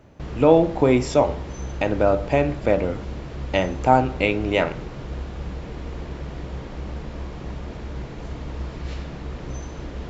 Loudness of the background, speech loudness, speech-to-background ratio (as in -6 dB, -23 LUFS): -34.0 LUFS, -21.0 LUFS, 13.0 dB